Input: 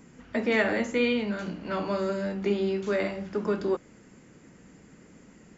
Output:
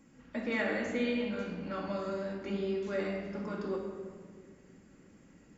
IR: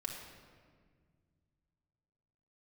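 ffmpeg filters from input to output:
-filter_complex "[1:a]atrim=start_sample=2205[s0];[0:a][s0]afir=irnorm=-1:irlink=0,volume=0.447"

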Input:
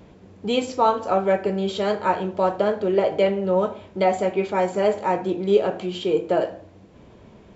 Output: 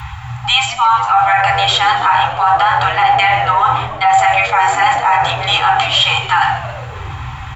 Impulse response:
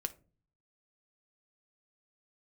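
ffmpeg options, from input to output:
-filter_complex "[1:a]atrim=start_sample=2205,asetrate=57330,aresample=44100[s0];[0:a][s0]afir=irnorm=-1:irlink=0,afftfilt=real='re*(1-between(b*sr/4096,120,740))':imag='im*(1-between(b*sr/4096,120,740))':win_size=4096:overlap=0.75,highpass=f=52:p=1,equalizer=f=5300:w=1.2:g=-11.5,areverse,acompressor=threshold=0.0141:ratio=12,areverse,asplit=7[s1][s2][s3][s4][s5][s6][s7];[s2]adelay=138,afreqshift=-98,volume=0.158[s8];[s3]adelay=276,afreqshift=-196,volume=0.0966[s9];[s4]adelay=414,afreqshift=-294,volume=0.0589[s10];[s5]adelay=552,afreqshift=-392,volume=0.0359[s11];[s6]adelay=690,afreqshift=-490,volume=0.0219[s12];[s7]adelay=828,afreqshift=-588,volume=0.0133[s13];[s1][s8][s9][s10][s11][s12][s13]amix=inputs=7:normalize=0,afreqshift=22,alimiter=level_in=53.1:limit=0.891:release=50:level=0:latency=1,volume=0.794"

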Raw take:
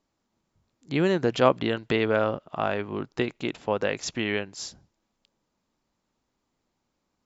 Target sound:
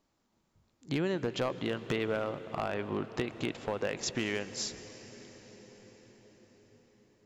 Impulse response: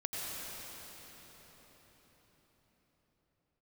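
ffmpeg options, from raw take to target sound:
-filter_complex "[0:a]acompressor=threshold=0.0282:ratio=4,volume=16.8,asoftclip=hard,volume=0.0596,asplit=2[s0][s1];[1:a]atrim=start_sample=2205,asetrate=31311,aresample=44100[s2];[s1][s2]afir=irnorm=-1:irlink=0,volume=0.141[s3];[s0][s3]amix=inputs=2:normalize=0"

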